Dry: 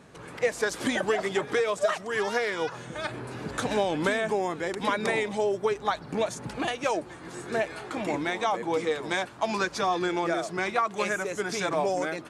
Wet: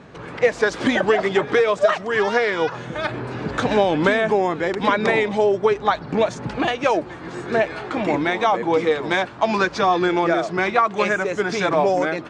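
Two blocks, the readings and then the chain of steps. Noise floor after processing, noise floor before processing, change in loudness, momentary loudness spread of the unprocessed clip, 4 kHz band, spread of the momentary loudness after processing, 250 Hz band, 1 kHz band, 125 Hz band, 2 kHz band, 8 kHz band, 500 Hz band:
-36 dBFS, -44 dBFS, +8.5 dB, 6 LU, +5.5 dB, 6 LU, +9.0 dB, +8.5 dB, +9.0 dB, +8.0 dB, n/a, +8.5 dB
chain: air absorption 130 m; gain +9 dB

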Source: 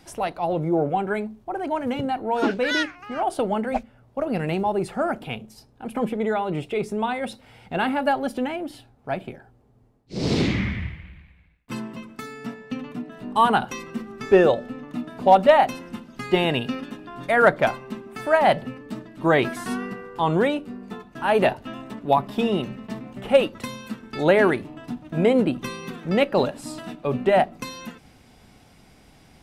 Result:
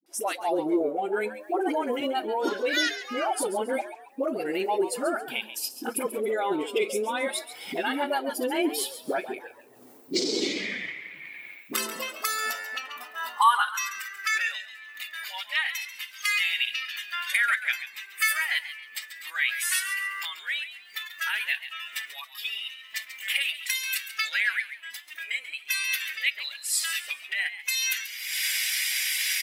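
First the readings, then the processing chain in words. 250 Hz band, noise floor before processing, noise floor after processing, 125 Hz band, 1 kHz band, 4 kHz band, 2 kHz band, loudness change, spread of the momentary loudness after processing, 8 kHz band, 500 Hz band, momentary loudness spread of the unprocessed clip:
-9.0 dB, -55 dBFS, -49 dBFS, under -25 dB, -7.0 dB, +5.0 dB, +2.5 dB, -4.5 dB, 11 LU, +13.5 dB, -9.0 dB, 17 LU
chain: bin magnitudes rounded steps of 15 dB; recorder AGC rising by 36 dB/s; HPF 140 Hz; high shelf 9100 Hz +9.5 dB; dispersion highs, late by 62 ms, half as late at 480 Hz; high-pass sweep 330 Hz -> 2000 Hz, 11.34–14.52; tilt +3 dB/oct; spectral noise reduction 9 dB; frequency-shifting echo 0.137 s, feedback 33%, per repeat +97 Hz, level -12 dB; gain -7.5 dB

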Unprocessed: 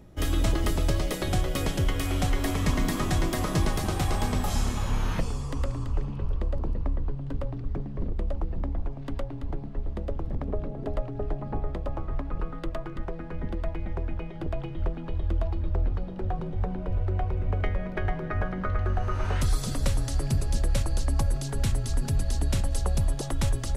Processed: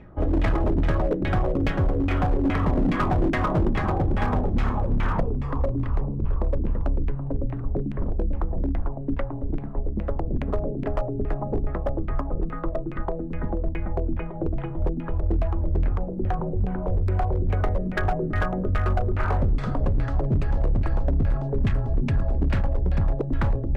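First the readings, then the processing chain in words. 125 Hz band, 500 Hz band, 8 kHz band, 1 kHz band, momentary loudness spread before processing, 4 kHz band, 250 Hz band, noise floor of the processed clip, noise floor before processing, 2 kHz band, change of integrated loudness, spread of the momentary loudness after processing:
+3.5 dB, +6.0 dB, under -20 dB, +5.0 dB, 8 LU, -8.0 dB, +6.0 dB, -31 dBFS, -36 dBFS, +3.5 dB, +4.0 dB, 7 LU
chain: LFO low-pass saw down 2.4 Hz 230–2400 Hz; hard clip -21 dBFS, distortion -16 dB; gain +4 dB

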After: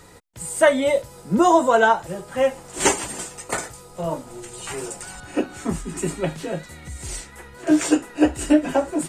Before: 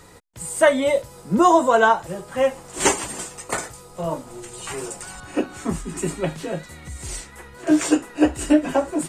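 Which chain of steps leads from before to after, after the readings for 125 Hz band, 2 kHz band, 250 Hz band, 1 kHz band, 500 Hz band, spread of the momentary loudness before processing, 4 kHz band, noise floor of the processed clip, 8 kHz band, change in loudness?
0.0 dB, 0.0 dB, 0.0 dB, -1.0 dB, 0.0 dB, 17 LU, 0.0 dB, -45 dBFS, 0.0 dB, -0.5 dB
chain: notch 1100 Hz, Q 16

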